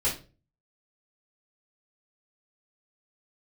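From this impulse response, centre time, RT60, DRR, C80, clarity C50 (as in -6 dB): 25 ms, 0.35 s, -8.5 dB, 15.5 dB, 8.0 dB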